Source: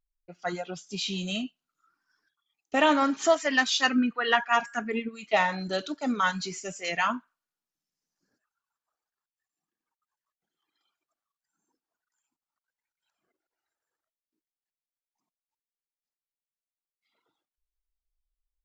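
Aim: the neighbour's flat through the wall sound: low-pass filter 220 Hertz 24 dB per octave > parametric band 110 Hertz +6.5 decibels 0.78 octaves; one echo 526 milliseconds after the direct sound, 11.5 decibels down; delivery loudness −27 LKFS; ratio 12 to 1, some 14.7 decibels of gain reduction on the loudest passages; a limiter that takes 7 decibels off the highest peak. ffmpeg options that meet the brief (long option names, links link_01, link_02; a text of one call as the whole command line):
ffmpeg -i in.wav -af "acompressor=threshold=-32dB:ratio=12,alimiter=level_in=2.5dB:limit=-24dB:level=0:latency=1,volume=-2.5dB,lowpass=frequency=220:width=0.5412,lowpass=frequency=220:width=1.3066,equalizer=frequency=110:width_type=o:width=0.78:gain=6.5,aecho=1:1:526:0.266,volume=19dB" out.wav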